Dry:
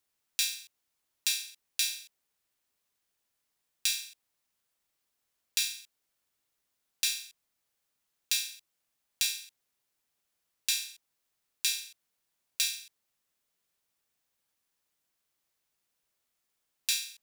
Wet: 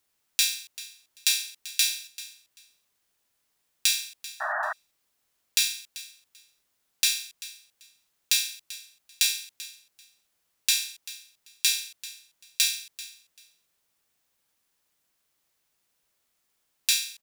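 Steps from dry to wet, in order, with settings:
repeating echo 389 ms, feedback 18%, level −17 dB
sound drawn into the spectrogram noise, 0:04.40–0:04.73, 600–1,900 Hz −35 dBFS
level +6 dB

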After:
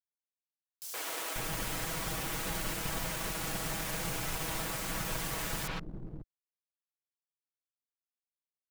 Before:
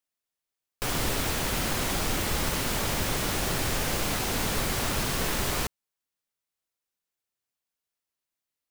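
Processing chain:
lower of the sound and its delayed copy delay 6.2 ms
three-band delay without the direct sound highs, mids, lows 120/540 ms, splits 350/4,400 Hz
dead-zone distortion −45.5 dBFS
level −4 dB

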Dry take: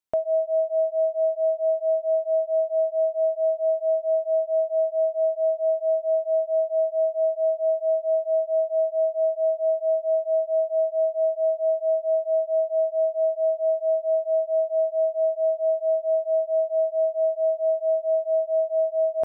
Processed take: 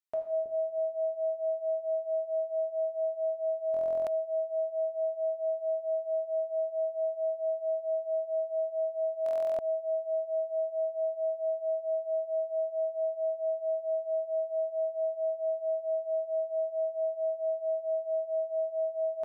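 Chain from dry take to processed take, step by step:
low-shelf EQ 430 Hz −9.5 dB
notch filter 540 Hz, Q 12
tuned comb filter 610 Hz, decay 0.26 s, mix 60%
bucket-brigade delay 322 ms, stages 1,024, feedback 38%, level −3.5 dB
on a send at −2 dB: convolution reverb, pre-delay 3 ms
on the sum: buffer that repeats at 0:03.72/0:09.24, samples 1,024, times 14

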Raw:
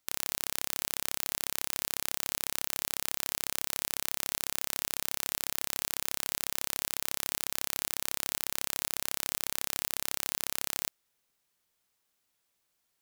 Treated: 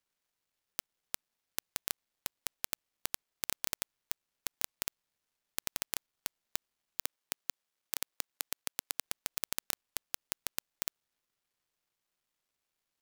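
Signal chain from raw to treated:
gap after every zero crossing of 0.077 ms
0:07.02–0:09.05: low-shelf EQ 170 Hz −11 dB

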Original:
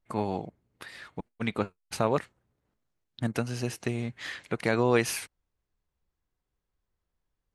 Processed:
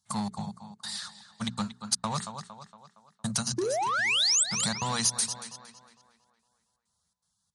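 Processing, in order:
gate pattern "xxx.xxxx.xxx." 162 BPM −60 dB
drawn EQ curve 110 Hz 0 dB, 210 Hz +7 dB, 290 Hz −23 dB, 430 Hz −19 dB, 840 Hz +1 dB, 1,200 Hz +2 dB, 2,400 Hz −12 dB, 3,900 Hz +9 dB, 6,700 Hz +12 dB, 12,000 Hz +10 dB
sound drawn into the spectrogram rise, 0:03.58–0:04.44, 330–8,600 Hz −18 dBFS
mains-hum notches 60/120/180/240/300/360/420 Hz
on a send: tape delay 230 ms, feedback 51%, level −12.5 dB, low-pass 4,600 Hz
on the sum: downward compressor 16 to 1, threshold −27 dBFS, peak gain reduction 11.5 dB
high-pass filter 68 Hz 24 dB per octave
in parallel at −9 dB: wave folding −32 dBFS
on the sum: high-shelf EQ 2,900 Hz +7 dB
MP3 48 kbit/s 44,100 Hz

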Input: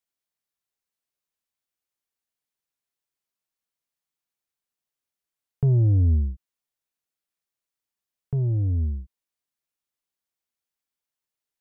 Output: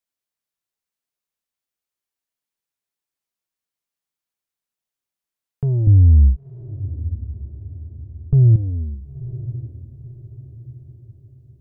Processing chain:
0:05.87–0:08.56: spectral tilt −4 dB per octave
brickwall limiter −6 dBFS, peak gain reduction 6 dB
on a send: feedback delay with all-pass diffusion 985 ms, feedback 44%, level −14.5 dB

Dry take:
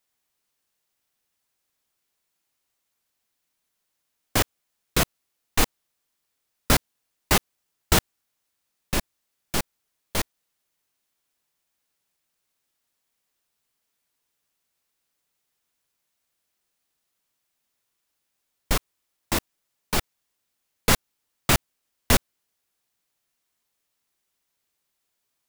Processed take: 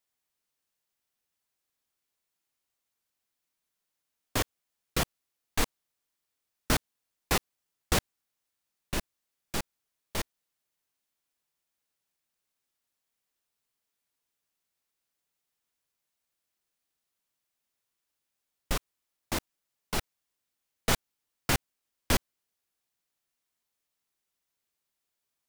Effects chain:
highs frequency-modulated by the lows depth 0.68 ms
level −6.5 dB

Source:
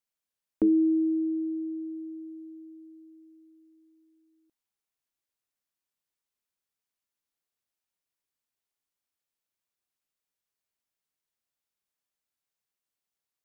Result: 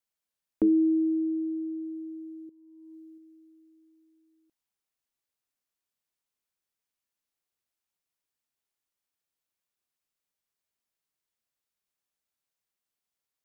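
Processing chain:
0:02.49–0:03.18: compressor whose output falls as the input rises −50 dBFS, ratio −0.5

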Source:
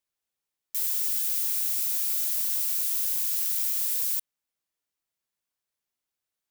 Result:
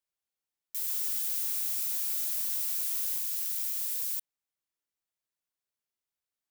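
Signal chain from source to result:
0:00.88–0:03.18: converter with a step at zero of −36 dBFS
level −5.5 dB

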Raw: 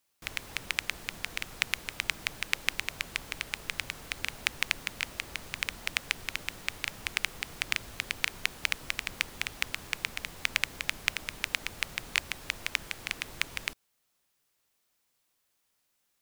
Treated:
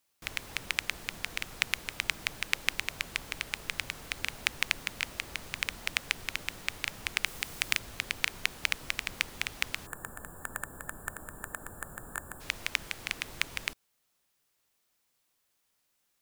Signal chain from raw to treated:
0:07.26–0:07.79: high-shelf EQ 6,000 Hz +6.5 dB
0:09.86–0:12.40: gain on a spectral selection 1,800–6,900 Hz −26 dB

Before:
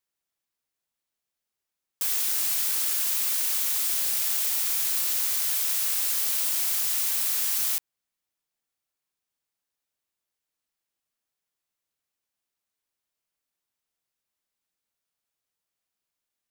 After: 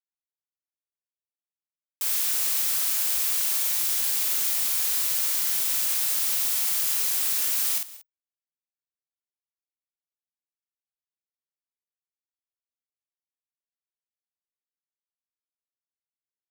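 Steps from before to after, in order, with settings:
mu-law and A-law mismatch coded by A
high-pass filter 120 Hz 24 dB per octave, from 0:07.76 300 Hz
frequency shifter −15 Hz
double-tracking delay 48 ms −3 dB
single-tap delay 186 ms −18 dB

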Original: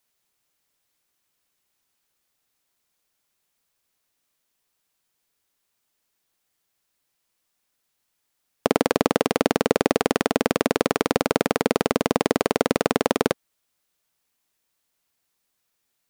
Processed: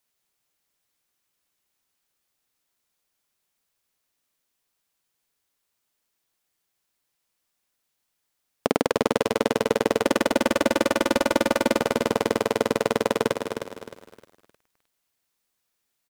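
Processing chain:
0:10.03–0:11.77: comb filter 3.4 ms, depth 90%
repeating echo 198 ms, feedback 28%, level −11.5 dB
feedback echo at a low word length 309 ms, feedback 35%, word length 8 bits, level −8 dB
level −2.5 dB

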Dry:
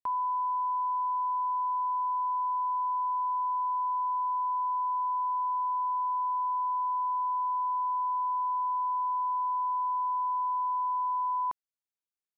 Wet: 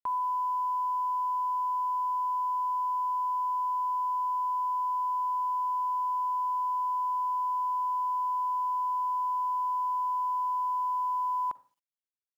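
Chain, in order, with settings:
convolution reverb RT60 0.40 s, pre-delay 40 ms, DRR 17 dB
log-companded quantiser 8 bits

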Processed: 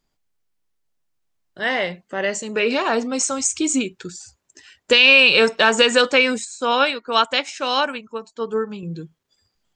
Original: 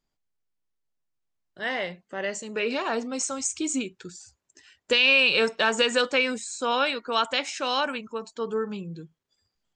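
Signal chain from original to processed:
0:06.45–0:08.83: expander for the loud parts 1.5 to 1, over −42 dBFS
level +7.5 dB

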